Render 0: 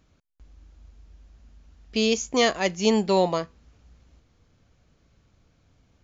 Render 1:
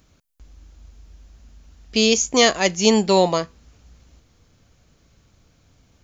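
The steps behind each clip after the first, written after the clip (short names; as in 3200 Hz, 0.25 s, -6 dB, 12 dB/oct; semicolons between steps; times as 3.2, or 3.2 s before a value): high shelf 5700 Hz +11 dB; gain +4.5 dB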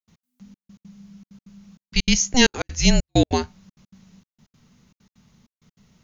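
frequency shift -250 Hz; step gate ".x.xxxx..x.xxxxx" 195 bpm -60 dB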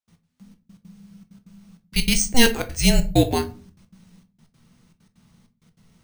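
shoebox room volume 190 m³, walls furnished, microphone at 0.71 m; careless resampling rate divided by 3×, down none, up hold; gain -1 dB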